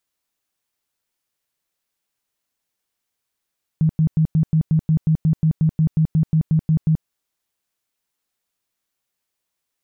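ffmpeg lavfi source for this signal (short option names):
-f lavfi -i "aevalsrc='0.237*sin(2*PI*158*mod(t,0.18))*lt(mod(t,0.18),13/158)':d=3.24:s=44100"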